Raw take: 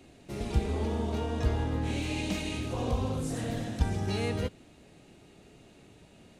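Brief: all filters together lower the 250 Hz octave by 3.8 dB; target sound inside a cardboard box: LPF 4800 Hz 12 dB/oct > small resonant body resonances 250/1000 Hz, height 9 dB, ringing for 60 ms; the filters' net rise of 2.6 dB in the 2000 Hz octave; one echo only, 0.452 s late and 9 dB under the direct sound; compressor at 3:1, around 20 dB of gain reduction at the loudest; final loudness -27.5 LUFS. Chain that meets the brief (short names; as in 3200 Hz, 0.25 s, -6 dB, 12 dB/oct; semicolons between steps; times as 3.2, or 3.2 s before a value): bell 250 Hz -5 dB; bell 2000 Hz +3.5 dB; compressor 3:1, threshold -49 dBFS; LPF 4800 Hz 12 dB/oct; echo 0.452 s -9 dB; small resonant body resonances 250/1000 Hz, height 9 dB, ringing for 60 ms; gain +20 dB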